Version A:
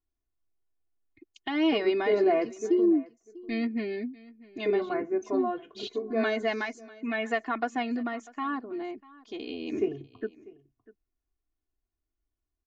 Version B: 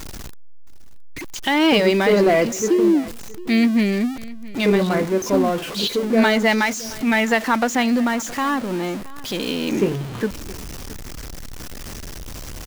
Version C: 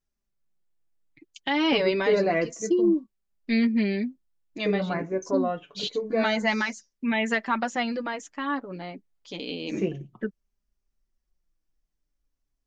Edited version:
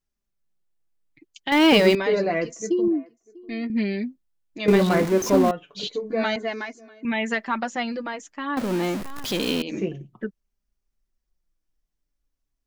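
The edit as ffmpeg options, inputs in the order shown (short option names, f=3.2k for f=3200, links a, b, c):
-filter_complex "[1:a]asplit=3[a][b][c];[0:a]asplit=2[d][e];[2:a]asplit=6[f][g][h][i][j][k];[f]atrim=end=1.522[l];[a]atrim=start=1.518:end=1.952[m];[g]atrim=start=1.948:end=2.882[n];[d]atrim=start=2.878:end=3.702[o];[h]atrim=start=3.698:end=4.682[p];[b]atrim=start=4.678:end=5.512[q];[i]atrim=start=5.508:end=6.362[r];[e]atrim=start=6.358:end=7.052[s];[j]atrim=start=7.048:end=8.572[t];[c]atrim=start=8.568:end=9.622[u];[k]atrim=start=9.618[v];[l][m]acrossfade=d=0.004:c1=hsin:c2=hsin[w];[w][n]acrossfade=d=0.004:c1=hsin:c2=hsin[x];[x][o]acrossfade=d=0.004:c1=hsin:c2=hsin[y];[y][p]acrossfade=d=0.004:c1=hsin:c2=hsin[z];[z][q]acrossfade=d=0.004:c1=hsin:c2=hsin[aa];[aa][r]acrossfade=d=0.004:c1=hsin:c2=hsin[ab];[ab][s]acrossfade=d=0.004:c1=hsin:c2=hsin[ac];[ac][t]acrossfade=d=0.004:c1=hsin:c2=hsin[ad];[ad][u]acrossfade=d=0.004:c1=hsin:c2=hsin[ae];[ae][v]acrossfade=d=0.004:c1=hsin:c2=hsin"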